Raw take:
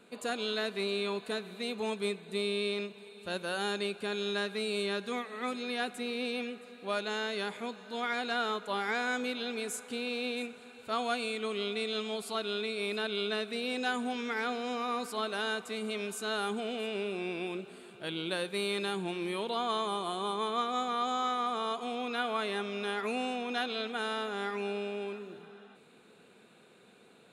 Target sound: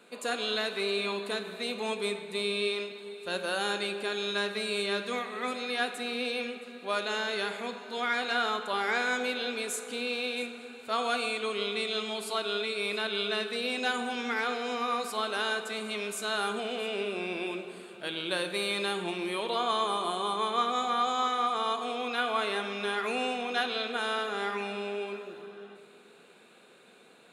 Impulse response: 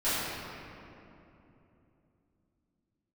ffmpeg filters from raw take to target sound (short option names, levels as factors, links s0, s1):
-filter_complex "[0:a]highpass=f=390:p=1,asplit=2[s0][s1];[1:a]atrim=start_sample=2205,asetrate=79380,aresample=44100[s2];[s1][s2]afir=irnorm=-1:irlink=0,volume=0.2[s3];[s0][s3]amix=inputs=2:normalize=0,volume=1.41"